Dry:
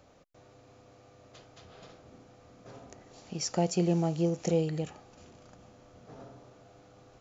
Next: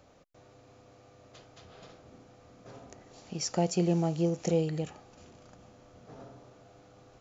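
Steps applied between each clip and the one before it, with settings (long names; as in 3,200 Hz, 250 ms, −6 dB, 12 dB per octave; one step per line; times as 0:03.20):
no processing that can be heard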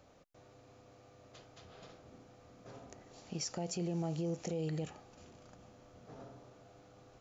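brickwall limiter −26 dBFS, peak gain reduction 10 dB
level −3 dB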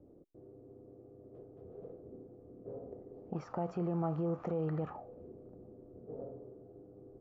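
envelope-controlled low-pass 330–1,200 Hz up, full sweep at −37 dBFS
level +1.5 dB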